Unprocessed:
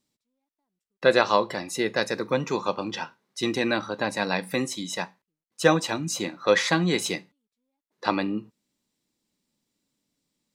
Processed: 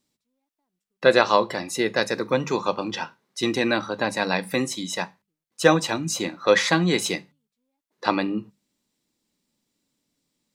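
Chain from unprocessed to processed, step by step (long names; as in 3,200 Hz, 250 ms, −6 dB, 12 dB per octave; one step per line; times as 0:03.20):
mains-hum notches 50/100/150/200 Hz
level +2.5 dB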